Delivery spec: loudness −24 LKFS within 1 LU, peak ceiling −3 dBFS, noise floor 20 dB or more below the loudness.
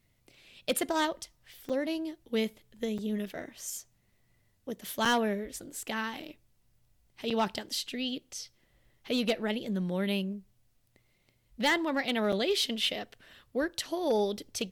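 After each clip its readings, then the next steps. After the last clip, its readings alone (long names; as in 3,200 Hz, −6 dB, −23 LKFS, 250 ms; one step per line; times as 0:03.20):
share of clipped samples 0.2%; peaks flattened at −20.5 dBFS; number of dropouts 5; longest dropout 5.9 ms; integrated loudness −32.0 LKFS; sample peak −20.5 dBFS; target loudness −24.0 LKFS
→ clipped peaks rebuilt −20.5 dBFS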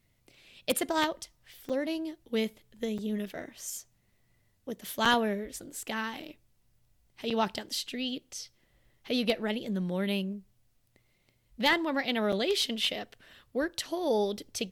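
share of clipped samples 0.0%; number of dropouts 5; longest dropout 5.9 ms
→ repair the gap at 0:01.69/0:02.98/0:05.05/0:07.30/0:12.32, 5.9 ms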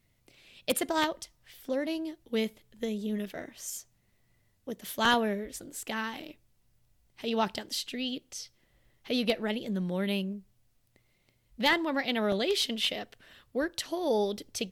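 number of dropouts 0; integrated loudness −31.5 LKFS; sample peak −11.5 dBFS; target loudness −24.0 LKFS
→ level +7.5 dB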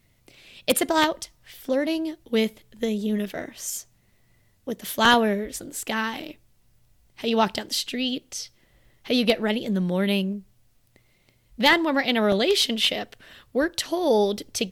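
integrated loudness −24.0 LKFS; sample peak −4.0 dBFS; background noise floor −63 dBFS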